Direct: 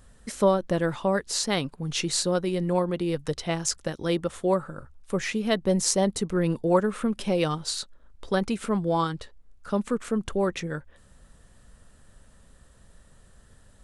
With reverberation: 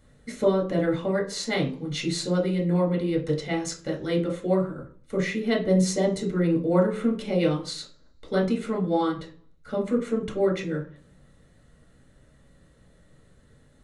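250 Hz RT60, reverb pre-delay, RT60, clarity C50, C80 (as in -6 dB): 0.70 s, 3 ms, 0.45 s, 10.0 dB, 15.5 dB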